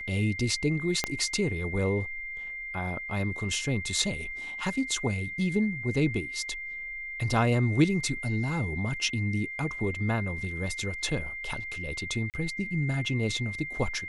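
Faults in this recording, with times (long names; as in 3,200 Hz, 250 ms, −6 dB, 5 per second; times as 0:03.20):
whistle 2,100 Hz −35 dBFS
0:01.04: click −11 dBFS
0:12.30–0:12.34: drop-out 38 ms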